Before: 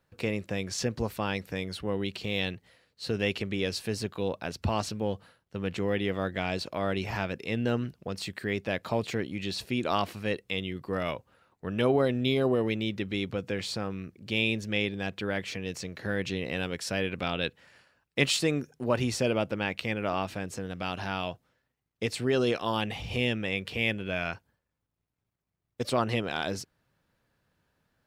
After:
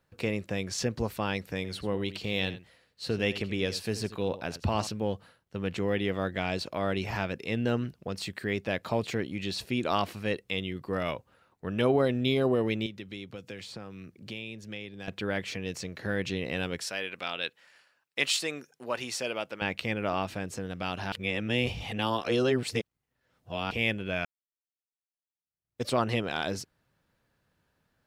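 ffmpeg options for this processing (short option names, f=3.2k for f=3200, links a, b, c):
-filter_complex "[0:a]asettb=1/sr,asplit=3[a][b][c];[a]atrim=end=1.564[d];[b]atrim=start=1.56:end=4.87,asetpts=PTS-STARTPTS,afade=t=in:d=0.004:c=qsin,afade=t=out:st=3.306:d=0.004:c=qsin,aecho=1:1:83:0.188,atrim=end_sample=145971[e];[c]atrim=start=4.866[f];[d][e]acrossfade=d=0.004:c1=hsin:c2=qsin[g];[g][f]acrossfade=d=0.004:c1=qsin:c2=hsin,asettb=1/sr,asplit=3[h][i][j];[h]atrim=end=12.864[k];[i]atrim=start=12.86:end=15.08,asetpts=PTS-STARTPTS,afade=t=in:d=0.004:c=qsin,afade=t=out:st=2.216:d=0.004:c=qsin,acrossover=split=96|2800[l][m][n];[l]acompressor=threshold=-59dB:ratio=4[o];[m]acompressor=threshold=-41dB:ratio=4[p];[n]acompressor=threshold=-47dB:ratio=4[q];[o][p][q]amix=inputs=3:normalize=0[r];[j]atrim=start=15.076[s];[k][r]acrossfade=d=0.004:c1=hsin:c2=qsin[t];[t][s]acrossfade=d=0.004:c1=qsin:c2=hsin,asettb=1/sr,asplit=3[u][v][w];[u]atrim=end=16.854[x];[v]atrim=start=16.85:end=19.62,asetpts=PTS-STARTPTS,afade=t=in:d=0.004:c=qsin,afade=t=out:st=2.766:d=0.004:c=qsin,highpass=f=980:p=1[y];[w]atrim=start=19.616[z];[x][y]acrossfade=d=0.004:c1=hsin:c2=qsin[aa];[aa][z]acrossfade=d=0.004:c1=qsin:c2=hsin,asplit=4[ab][ac][ad][ae];[ab]atrim=end=21.122[af];[ac]atrim=start=21.118:end=23.712,asetpts=PTS-STARTPTS,areverse[ag];[ad]atrim=start=23.708:end=24.25,asetpts=PTS-STARTPTS,afade=t=out:st=0.538:d=0.004:c=hsin[ah];[ae]atrim=start=24.25,asetpts=PTS-STARTPTS,afade=t=in:d=1.58:c=exp[ai];[af][ag]acrossfade=d=0.004:c1=hsin:c2=hsin[aj];[ah][ai]concat=n=2:v=0:a=1[ak];[aj][ak]acrossfade=d=0.004:c1=hsin:c2=hsin"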